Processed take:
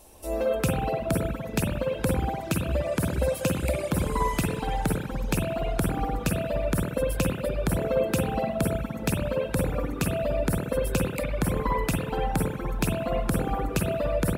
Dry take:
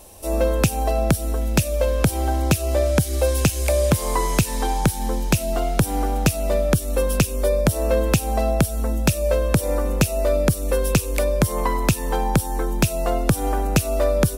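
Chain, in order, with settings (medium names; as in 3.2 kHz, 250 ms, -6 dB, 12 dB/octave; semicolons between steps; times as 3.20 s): spring tank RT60 2.4 s, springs 48/59 ms, chirp 70 ms, DRR -4.5 dB; dynamic bell 5.8 kHz, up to -5 dB, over -44 dBFS, Q 2.8; reverb removal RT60 1.9 s; trim -7.5 dB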